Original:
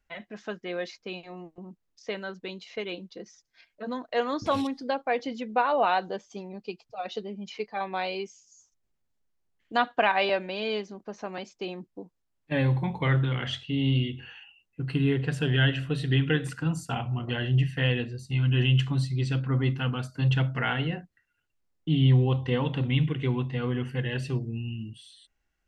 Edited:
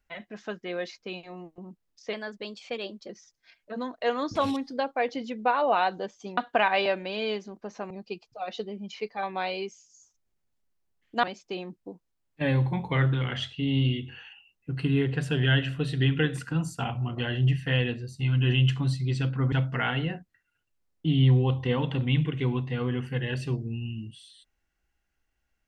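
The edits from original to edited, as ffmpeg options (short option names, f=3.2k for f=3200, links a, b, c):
-filter_complex "[0:a]asplit=7[a][b][c][d][e][f][g];[a]atrim=end=2.134[h];[b]atrim=start=2.13:end=3.2,asetpts=PTS-STARTPTS,asetrate=48951,aresample=44100[i];[c]atrim=start=3.196:end=6.482[j];[d]atrim=start=9.808:end=11.342[k];[e]atrim=start=6.478:end=9.812[l];[f]atrim=start=11.338:end=19.632[m];[g]atrim=start=20.348[n];[h][i]acrossfade=d=0.004:c1=hsin:c2=hsin[o];[o][j]acrossfade=d=0.004:c1=hsin:c2=hsin[p];[p][k]acrossfade=d=0.004:c1=hsin:c2=hsin[q];[q][l]acrossfade=d=0.004:c1=hsin:c2=hsin[r];[r][m]acrossfade=d=0.004:c1=hsin:c2=hsin[s];[s][n]acrossfade=d=0.004:c1=hsin:c2=hsin"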